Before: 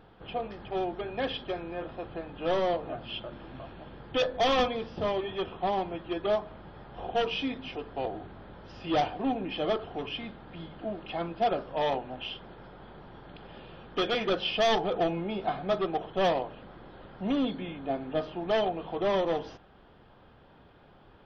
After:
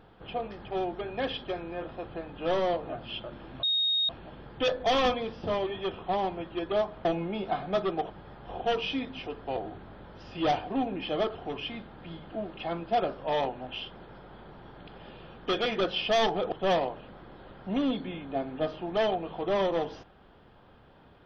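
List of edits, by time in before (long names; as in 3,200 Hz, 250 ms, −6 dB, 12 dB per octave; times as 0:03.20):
0:03.63: insert tone 3,730 Hz −23.5 dBFS 0.46 s
0:15.01–0:16.06: move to 0:06.59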